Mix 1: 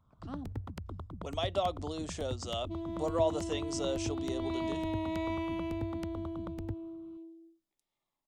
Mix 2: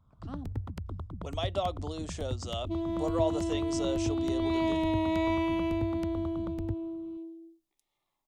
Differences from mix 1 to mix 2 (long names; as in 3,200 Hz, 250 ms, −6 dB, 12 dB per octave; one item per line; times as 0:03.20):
first sound: add low-shelf EQ 170 Hz +6 dB
second sound +6.5 dB